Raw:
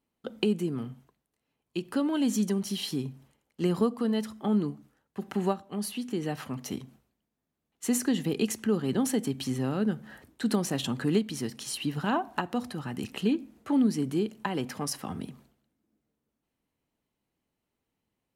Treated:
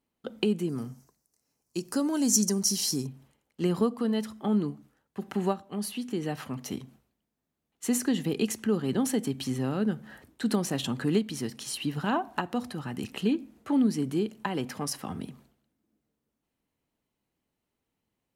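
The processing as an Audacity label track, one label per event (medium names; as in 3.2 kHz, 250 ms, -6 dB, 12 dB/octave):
0.690000	3.070000	resonant high shelf 4.3 kHz +9.5 dB, Q 3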